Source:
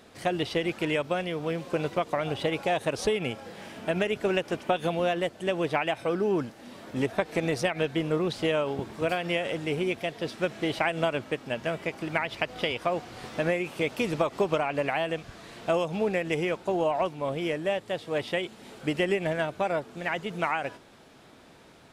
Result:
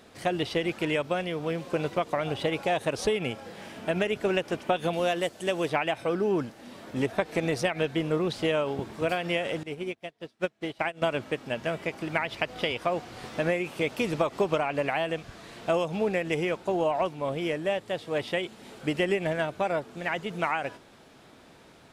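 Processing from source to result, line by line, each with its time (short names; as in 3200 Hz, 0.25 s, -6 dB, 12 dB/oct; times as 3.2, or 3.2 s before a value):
4.93–5.7 tone controls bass -3 dB, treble +8 dB
9.63–11.02 upward expander 2.5:1, over -43 dBFS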